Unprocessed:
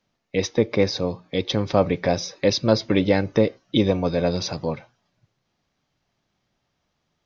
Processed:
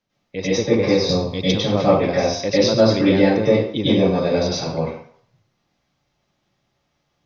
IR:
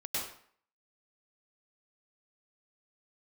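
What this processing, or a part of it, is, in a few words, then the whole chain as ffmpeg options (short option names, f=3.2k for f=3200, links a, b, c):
bathroom: -filter_complex "[1:a]atrim=start_sample=2205[a];[0:a][a]afir=irnorm=-1:irlink=0,asettb=1/sr,asplit=3[b][c][d];[b]atrim=end=1.094[e];[c]atrim=start=1.09:end=1.58,asetpts=PTS-STARTPTS,afade=t=in:d=0.004:c=qsin,afade=t=out:st=0.486:d=0.004:c=qsin,bass=f=250:g=6,treble=f=4k:g=12[f];[d]atrim=start=1.576[g];[e][f]acrossfade=d=0.004:c1=hsin:c2=qsin[h];[h][g]acrossfade=d=0.004:c1=qsin:c2=hsin"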